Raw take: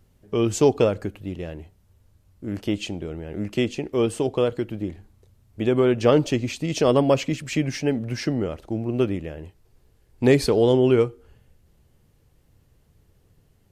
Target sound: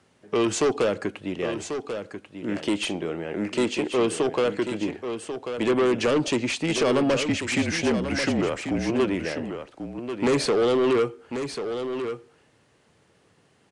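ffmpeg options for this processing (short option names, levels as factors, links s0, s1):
-filter_complex "[0:a]highpass=200,equalizer=f=1600:t=o:w=2.7:g=7,acrossover=split=460|3000[s0][s1][s2];[s1]acompressor=threshold=0.0631:ratio=6[s3];[s0][s3][s2]amix=inputs=3:normalize=0,acrossover=split=1600[s4][s5];[s5]aeval=exprs='0.0562*(abs(mod(val(0)/0.0562+3,4)-2)-1)':c=same[s6];[s4][s6]amix=inputs=2:normalize=0,asettb=1/sr,asplit=3[s7][s8][s9];[s7]atrim=end=7.264[s10];[s8]atrim=start=7.26:end=8.9,asetpts=PTS-STARTPTS,afade=t=in:d=0.004:c=qsin,afade=t=out:st=1.636:d=0.004:c=qsin,afreqshift=-39[s11];[s9]atrim=start=8.896[s12];[s10][s11]acrossfade=d=0.004:c1=hsin:c2=qsin[s13];[s13][s12]acrossfade=d=0.004:c1=qsin:c2=hsin,asoftclip=type=tanh:threshold=0.0944,asplit=2[s14][s15];[s15]aecho=0:1:1090:0.376[s16];[s14][s16]amix=inputs=2:normalize=0,aresample=22050,aresample=44100,asettb=1/sr,asplit=3[s17][s18][s19];[s17]atrim=end=2.804[s20];[s18]atrim=start=2.8:end=3.59,asetpts=PTS-STARTPTS,afade=t=in:d=0.004:c=qsin,afade=t=out:st=0.786:d=0.004:c=qsin,asplit=2[s21][s22];[s22]adelay=42,volume=0.224[s23];[s21][s23]amix=inputs=2:normalize=0,atrim=end_sample=34839[s24];[s19]atrim=start=3.586[s25];[s20][s24]acrossfade=d=0.004:c1=hsin:c2=qsin[s26];[s26][s25]acrossfade=d=0.004:c1=qsin:c2=hsin,volume=1.41"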